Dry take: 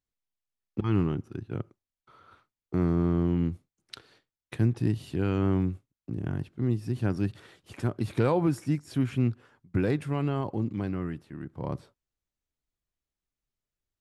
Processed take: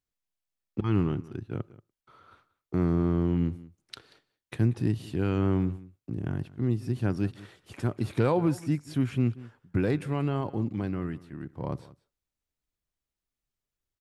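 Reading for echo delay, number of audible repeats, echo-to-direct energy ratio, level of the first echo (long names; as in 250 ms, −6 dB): 184 ms, 1, −19.5 dB, −19.5 dB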